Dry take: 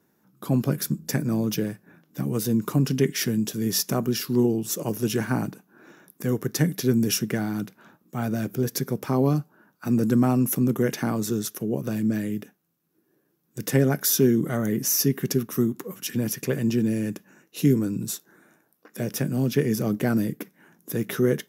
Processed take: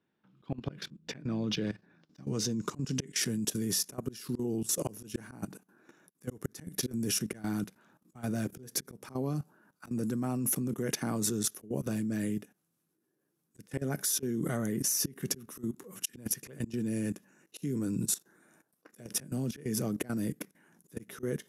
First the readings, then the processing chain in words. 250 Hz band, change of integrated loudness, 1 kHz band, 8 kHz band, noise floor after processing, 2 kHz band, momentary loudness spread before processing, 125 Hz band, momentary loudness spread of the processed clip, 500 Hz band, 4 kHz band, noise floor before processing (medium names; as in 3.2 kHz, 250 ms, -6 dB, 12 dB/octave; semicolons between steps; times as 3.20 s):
-10.5 dB, -9.0 dB, -10.5 dB, -3.5 dB, -80 dBFS, -9.5 dB, 11 LU, -11.5 dB, 12 LU, -12.0 dB, -5.5 dB, -69 dBFS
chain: slow attack 210 ms; level held to a coarse grid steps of 16 dB; low-pass sweep 3.2 kHz -> 10 kHz, 1.26–3.43 s